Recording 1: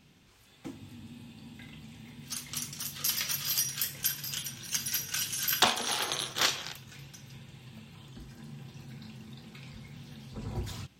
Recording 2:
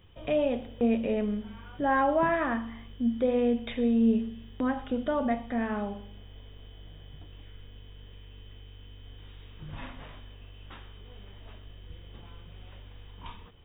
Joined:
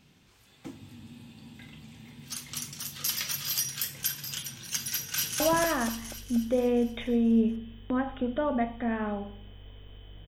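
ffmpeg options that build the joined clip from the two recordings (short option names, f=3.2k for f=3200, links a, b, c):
-filter_complex "[0:a]apad=whole_dur=10.27,atrim=end=10.27,atrim=end=5.402[a];[1:a]atrim=start=2.098:end=6.97[b];[a][b]acrossfade=d=0.004:c1=hsin:c2=hsin,asplit=2[c][d];[d]afade=t=in:st=4.93:d=0.01,afade=t=out:st=5.4:d=0.01,aecho=0:1:240|480|720|960|1200|1440|1680|1920|2160:0.944061|0.566437|0.339862|0.203917|0.12235|0.0734102|0.0440461|0.0264277|0.0158566[e];[c][e]amix=inputs=2:normalize=0"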